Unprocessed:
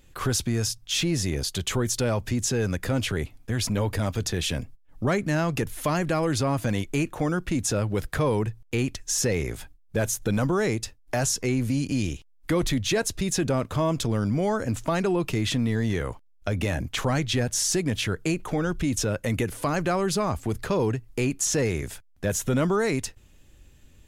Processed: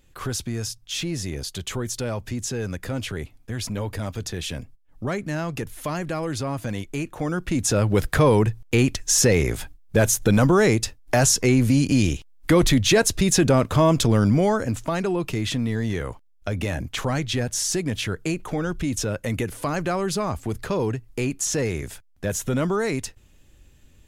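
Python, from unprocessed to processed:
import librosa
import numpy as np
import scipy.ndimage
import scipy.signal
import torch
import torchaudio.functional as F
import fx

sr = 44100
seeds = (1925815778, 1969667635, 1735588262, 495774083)

y = fx.gain(x, sr, db=fx.line((7.06, -3.0), (7.95, 7.0), (14.3, 7.0), (14.84, 0.0)))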